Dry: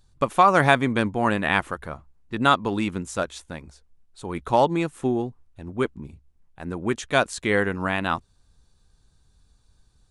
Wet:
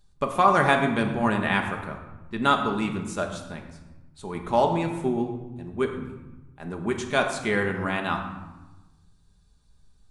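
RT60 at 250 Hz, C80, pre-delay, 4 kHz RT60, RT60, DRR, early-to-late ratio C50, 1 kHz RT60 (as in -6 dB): 1.5 s, 8.5 dB, 5 ms, 0.70 s, 1.1 s, 2.5 dB, 7.0 dB, 1.1 s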